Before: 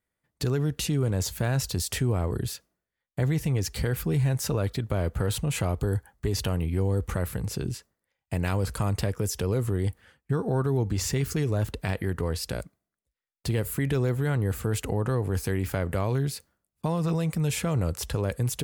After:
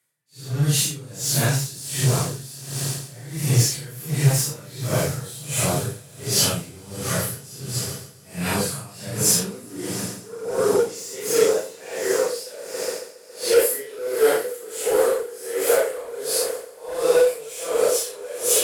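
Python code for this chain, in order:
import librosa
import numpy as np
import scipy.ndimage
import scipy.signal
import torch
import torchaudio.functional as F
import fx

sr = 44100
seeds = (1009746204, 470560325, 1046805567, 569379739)

p1 = fx.phase_scramble(x, sr, seeds[0], window_ms=200)
p2 = scipy.signal.sosfilt(scipy.signal.butter(2, 11000.0, 'lowpass', fs=sr, output='sos'), p1)
p3 = fx.riaa(p2, sr, side='recording')
p4 = fx.filter_sweep_highpass(p3, sr, from_hz=130.0, to_hz=470.0, start_s=9.18, end_s=10.18, q=7.1)
p5 = 10.0 ** (-20.5 / 20.0) * (np.abs((p4 / 10.0 ** (-20.5 / 20.0) + 3.0) % 4.0 - 2.0) - 1.0)
p6 = p4 + F.gain(torch.from_numpy(p5), -4.0).numpy()
p7 = fx.doubler(p6, sr, ms=34.0, db=-6)
p8 = fx.echo_swell(p7, sr, ms=138, loudest=5, wet_db=-17.0)
p9 = p8 * 10.0 ** (-20 * (0.5 - 0.5 * np.cos(2.0 * np.pi * 1.4 * np.arange(len(p8)) / sr)) / 20.0)
y = F.gain(torch.from_numpy(p9), 3.0).numpy()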